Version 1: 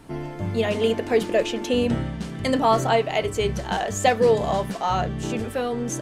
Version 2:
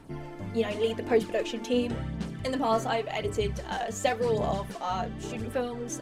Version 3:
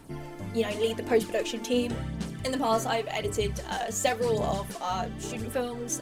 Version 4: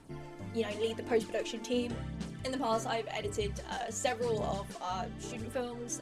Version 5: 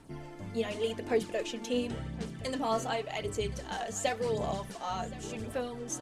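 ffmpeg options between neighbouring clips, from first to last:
-af "aphaser=in_gain=1:out_gain=1:delay=4.4:decay=0.46:speed=0.9:type=sinusoidal,volume=0.398"
-af "highshelf=f=6100:g=11.5"
-af "lowpass=9400,volume=0.501"
-af "aecho=1:1:1071:0.119,volume=1.12"

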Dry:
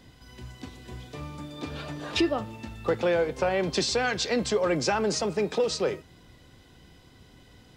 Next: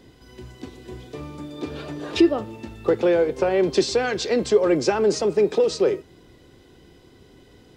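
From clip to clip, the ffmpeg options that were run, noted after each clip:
-af "equalizer=f=380:t=o:w=0.86:g=10.5"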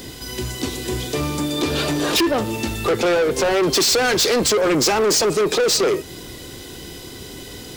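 -filter_complex "[0:a]asplit=2[s0][s1];[s1]acompressor=threshold=0.0447:ratio=6,volume=1.33[s2];[s0][s2]amix=inputs=2:normalize=0,crystalizer=i=4:c=0,asoftclip=type=tanh:threshold=0.0891,volume=2"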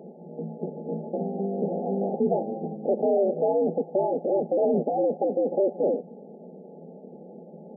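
-af "aeval=exprs='val(0)*sin(2*PI*100*n/s)':c=same,equalizer=f=300:t=o:w=0.25:g=-15,afftfilt=real='re*between(b*sr/4096,160,870)':imag='im*between(b*sr/4096,160,870)':win_size=4096:overlap=0.75"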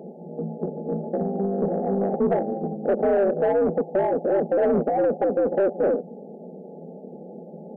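-af "aeval=exprs='(tanh(7.94*val(0)+0.05)-tanh(0.05))/7.94':c=same,volume=1.68"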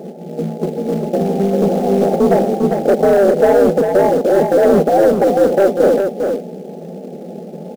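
-filter_complex "[0:a]asplit=2[s0][s1];[s1]acrusher=bits=3:mode=log:mix=0:aa=0.000001,volume=0.562[s2];[s0][s2]amix=inputs=2:normalize=0,aecho=1:1:399:0.531,volume=1.78"

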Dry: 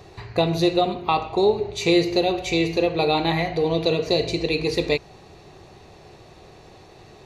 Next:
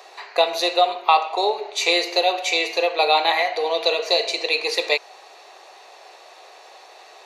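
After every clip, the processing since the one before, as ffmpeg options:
-af "highpass=f=580:w=0.5412,highpass=f=580:w=1.3066,volume=2"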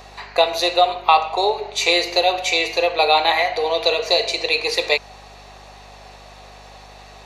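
-af "aeval=exprs='val(0)+0.00398*(sin(2*PI*50*n/s)+sin(2*PI*2*50*n/s)/2+sin(2*PI*3*50*n/s)/3+sin(2*PI*4*50*n/s)/4+sin(2*PI*5*50*n/s)/5)':c=same,volume=1.26"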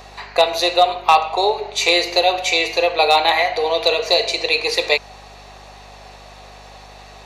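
-af "asoftclip=type=hard:threshold=0.562,volume=1.19"

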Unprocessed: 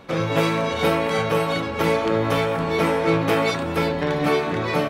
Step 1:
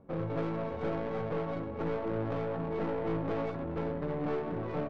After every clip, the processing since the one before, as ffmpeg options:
-af "aeval=exprs='(tanh(8.91*val(0)+0.3)-tanh(0.3))/8.91':c=same,adynamicsmooth=sensitivity=0.5:basefreq=540,volume=0.422"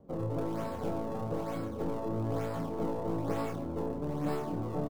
-filter_complex "[0:a]acrossover=split=250|1200[s0][s1][s2];[s2]acrusher=samples=33:mix=1:aa=0.000001:lfo=1:lforange=52.8:lforate=1.1[s3];[s0][s1][s3]amix=inputs=3:normalize=0,asplit=2[s4][s5];[s5]adelay=28,volume=0.596[s6];[s4][s6]amix=inputs=2:normalize=0"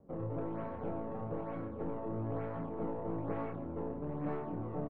-af "lowpass=f=2300:w=0.5412,lowpass=f=2300:w=1.3066,volume=0.596"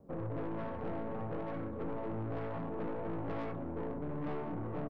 -af "aeval=exprs='(tanh(89.1*val(0)+0.35)-tanh(0.35))/89.1':c=same,volume=1.58"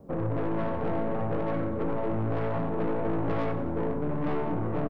-af "aecho=1:1:91|182|273|364|455:0.224|0.114|0.0582|0.0297|0.0151,volume=2.82"

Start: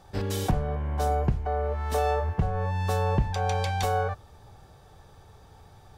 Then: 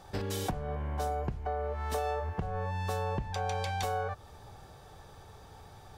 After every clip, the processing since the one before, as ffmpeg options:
-af "acompressor=threshold=0.0251:ratio=4,lowshelf=f=240:g=-4,volume=1.33"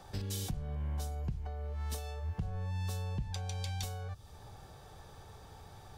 -filter_complex "[0:a]acrossover=split=210|3000[s0][s1][s2];[s1]acompressor=threshold=0.002:ratio=3[s3];[s0][s3][s2]amix=inputs=3:normalize=0"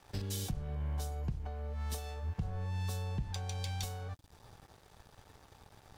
-af "aeval=exprs='sgn(val(0))*max(abs(val(0))-0.00224,0)':c=same,volume=1.12"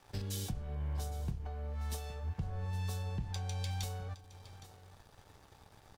-af "flanger=delay=7.7:depth=4.7:regen=-69:speed=0.42:shape=triangular,aecho=1:1:814:0.158,volume=1.41"

